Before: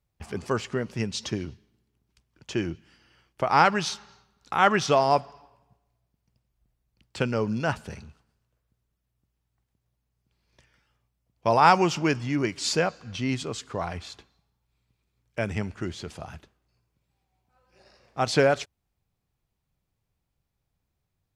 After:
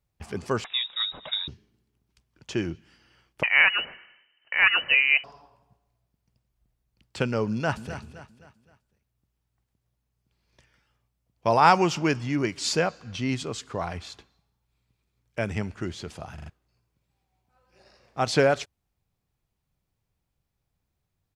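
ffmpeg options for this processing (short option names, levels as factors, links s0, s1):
-filter_complex "[0:a]asettb=1/sr,asplit=3[s0][s1][s2];[s0]atrim=end=0.644[s3];[s1]atrim=start=0.64:end=1.48,asetpts=PTS-STARTPTS,afade=t=in:d=0.004:c=qsin,afade=t=out:st=0.836:d=0.004:c=qsin,lowpass=f=3300:t=q:w=0.5098,lowpass=f=3300:t=q:w=0.6013,lowpass=f=3300:t=q:w=0.9,lowpass=f=3300:t=q:w=2.563,afreqshift=-3900[s4];[s2]atrim=start=1.476[s5];[s3][s4]acrossfade=d=0.004:c1=hsin:c2=qsin[s6];[s6][s5]acrossfade=d=0.004:c1=qsin:c2=hsin,asettb=1/sr,asplit=3[s7][s8][s9];[s7]atrim=end=3.434[s10];[s8]atrim=start=3.43:end=5.24,asetpts=PTS-STARTPTS,afade=t=in:d=0.004:c=qsin,afade=t=out:st=1.806:d=0.004:c=qsin,lowpass=f=2600:t=q:w=0.5098,lowpass=f=2600:t=q:w=0.6013,lowpass=f=2600:t=q:w=0.9,lowpass=f=2600:t=q:w=2.563,afreqshift=-3100[s11];[s9]atrim=start=5.236[s12];[s10][s11]acrossfade=d=0.004:c1=hsin:c2=qsin[s13];[s13][s12]acrossfade=d=0.004:c1=qsin:c2=hsin,asplit=2[s14][s15];[s15]afade=t=in:st=7.51:d=0.01,afade=t=out:st=8:d=0.01,aecho=0:1:260|520|780|1040:0.251189|0.100475|0.0401902|0.0160761[s16];[s14][s16]amix=inputs=2:normalize=0,asplit=5[s17][s18][s19][s20][s21];[s17]atrim=end=16.382[s22];[s18]atrim=start=16.338:end=16.382[s23];[s19]atrim=start=16.338:end=16.382[s24];[s20]atrim=start=16.338:end=16.382[s25];[s21]atrim=start=16.498[s26];[s22][s23]acrossfade=d=0.004:c1=hsin:c2=hsin[s27];[s27][s24]acrossfade=d=0.004:c1=hsin:c2=hsin[s28];[s28][s25]acrossfade=d=0.004:c1=hsin:c2=hsin[s29];[s29][s26]acrossfade=d=0.004:c1=hsin:c2=hsin"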